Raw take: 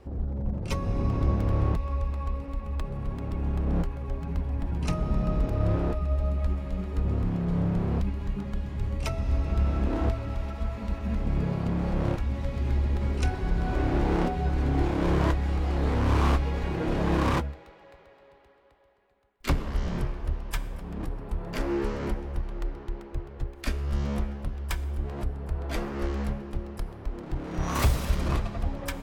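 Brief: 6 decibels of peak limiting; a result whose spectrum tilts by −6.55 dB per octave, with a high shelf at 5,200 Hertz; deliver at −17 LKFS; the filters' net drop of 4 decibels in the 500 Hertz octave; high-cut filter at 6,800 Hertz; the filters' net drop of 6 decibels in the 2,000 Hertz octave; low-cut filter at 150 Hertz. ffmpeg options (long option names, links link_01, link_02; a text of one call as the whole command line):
ffmpeg -i in.wav -af "highpass=150,lowpass=6800,equalizer=frequency=500:width_type=o:gain=-5,equalizer=frequency=2000:width_type=o:gain=-7,highshelf=frequency=5200:gain=-4,volume=19dB,alimiter=limit=-4dB:level=0:latency=1" out.wav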